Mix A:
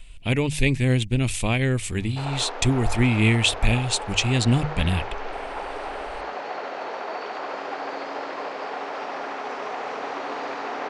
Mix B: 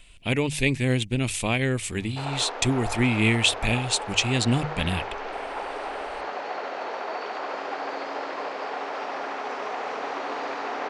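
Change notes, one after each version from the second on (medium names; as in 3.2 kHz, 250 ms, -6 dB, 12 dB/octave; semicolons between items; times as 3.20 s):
master: add bass shelf 100 Hz -11.5 dB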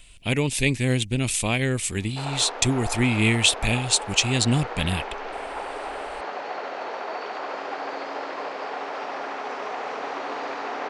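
speech: add tone controls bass +1 dB, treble +6 dB; master: remove hum notches 50/100/150 Hz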